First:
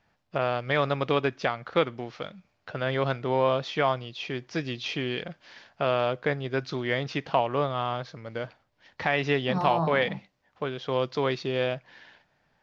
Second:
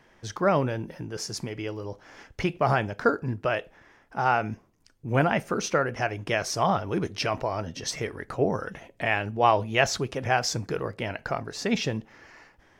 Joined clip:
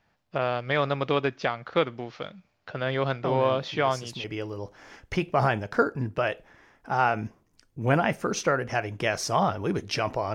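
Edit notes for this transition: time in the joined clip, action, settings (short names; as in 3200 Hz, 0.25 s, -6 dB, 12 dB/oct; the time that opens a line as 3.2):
first
3.24 add second from 0.51 s 1.00 s -7 dB
4.24 switch to second from 1.51 s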